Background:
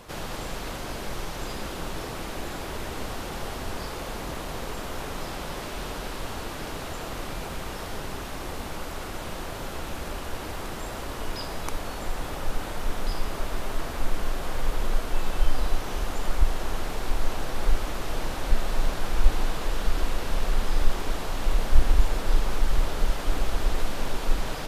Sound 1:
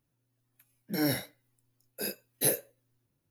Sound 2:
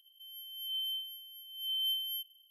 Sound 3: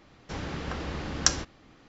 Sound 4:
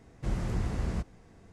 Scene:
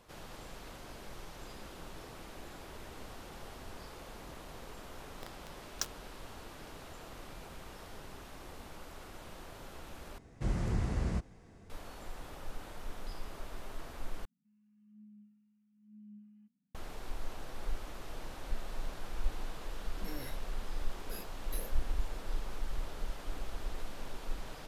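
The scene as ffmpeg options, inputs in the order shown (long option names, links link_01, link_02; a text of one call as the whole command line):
ffmpeg -i bed.wav -i cue0.wav -i cue1.wav -i cue2.wav -i cue3.wav -filter_complex "[0:a]volume=-14.5dB[link_01];[3:a]acrusher=bits=3:mix=0:aa=0.000001[link_02];[2:a]lowpass=frequency=2800:width_type=q:width=0.5098,lowpass=frequency=2800:width_type=q:width=0.6013,lowpass=frequency=2800:width_type=q:width=0.9,lowpass=frequency=2800:width_type=q:width=2.563,afreqshift=-3300[link_03];[1:a]acompressor=threshold=-30dB:ratio=6:attack=3.2:release=140:knee=1:detection=peak[link_04];[link_01]asplit=3[link_05][link_06][link_07];[link_05]atrim=end=10.184[link_08];[4:a]atrim=end=1.52,asetpts=PTS-STARTPTS,volume=-1.5dB[link_09];[link_06]atrim=start=11.696:end=14.254[link_10];[link_03]atrim=end=2.5,asetpts=PTS-STARTPTS,volume=-11.5dB[link_11];[link_07]atrim=start=16.746[link_12];[link_02]atrim=end=1.88,asetpts=PTS-STARTPTS,volume=-14.5dB,afade=type=in:duration=0.004:curve=hsin,afade=type=out:start_time=1.876:duration=0.004:curve=hsin,adelay=4550[link_13];[link_04]atrim=end=3.3,asetpts=PTS-STARTPTS,volume=-11dB,afade=type=in:duration=0.004:curve=hsin,afade=type=out:start_time=3.296:duration=0.004:curve=hsin,adelay=19110[link_14];[link_08][link_09]acrossfade=duration=0.004:curve1=hsin:curve2=hsin[link_15];[link_15][link_10]acrossfade=duration=0.004:curve1=hsin:curve2=hsin[link_16];[link_16][link_11]acrossfade=duration=0.004:curve1=hsin:curve2=hsin[link_17];[link_17][link_12]acrossfade=duration=0.004:curve1=hsin:curve2=hsin[link_18];[link_18][link_13][link_14]amix=inputs=3:normalize=0" out.wav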